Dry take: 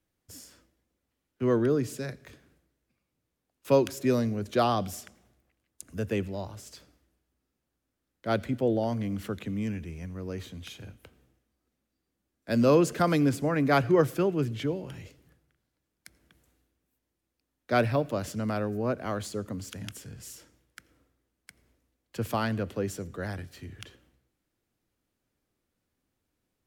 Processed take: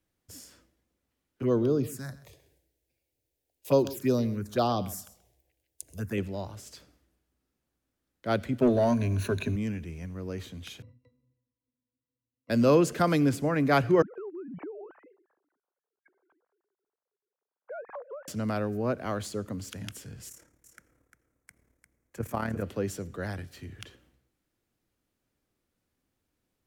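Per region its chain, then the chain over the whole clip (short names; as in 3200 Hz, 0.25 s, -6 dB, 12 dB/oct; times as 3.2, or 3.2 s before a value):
1.42–6.18 high shelf 12000 Hz +9 dB + envelope phaser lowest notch 200 Hz, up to 2100 Hz, full sweep at -20.5 dBFS + echo 0.13 s -17.5 dB
8.61–9.56 ripple EQ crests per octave 1.5, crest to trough 15 dB + sample leveller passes 1
10.82–12.5 sample sorter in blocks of 16 samples + octave resonator B, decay 0.14 s
14.02–18.28 sine-wave speech + LPF 1500 Hz 24 dB/oct + compressor 8:1, threshold -37 dBFS
20.29–22.63 band shelf 3700 Hz -10 dB 1.1 oct + AM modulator 36 Hz, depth 50% + echo 0.35 s -8 dB
whole clip: dry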